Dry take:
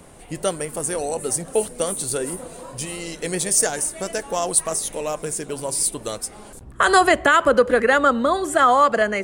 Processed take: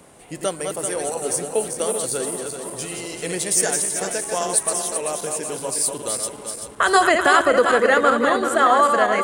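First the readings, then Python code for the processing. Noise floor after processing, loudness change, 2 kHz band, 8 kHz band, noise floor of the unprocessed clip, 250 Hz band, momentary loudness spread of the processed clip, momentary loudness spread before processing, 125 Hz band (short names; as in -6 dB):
-40 dBFS, 0.0 dB, +0.5 dB, +1.0 dB, -42 dBFS, -1.0 dB, 13 LU, 14 LU, -3.0 dB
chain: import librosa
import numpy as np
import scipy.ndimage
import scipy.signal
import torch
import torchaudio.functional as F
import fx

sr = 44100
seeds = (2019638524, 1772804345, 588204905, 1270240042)

y = fx.reverse_delay_fb(x, sr, ms=193, feedback_pct=67, wet_db=-5.0)
y = fx.highpass(y, sr, hz=180.0, slope=6)
y = y * librosa.db_to_amplitude(-1.0)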